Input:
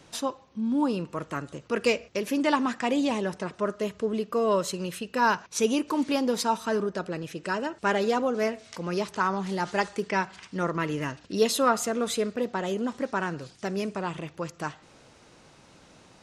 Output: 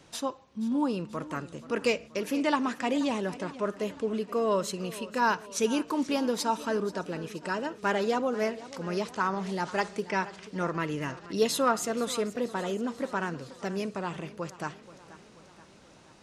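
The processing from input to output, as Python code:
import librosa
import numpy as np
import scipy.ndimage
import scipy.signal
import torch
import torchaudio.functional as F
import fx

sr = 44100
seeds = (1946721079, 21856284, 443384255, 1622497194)

y = np.clip(x, -10.0 ** (-12.0 / 20.0), 10.0 ** (-12.0 / 20.0))
y = fx.echo_warbled(y, sr, ms=481, feedback_pct=57, rate_hz=2.8, cents=75, wet_db=-17)
y = y * 10.0 ** (-2.5 / 20.0)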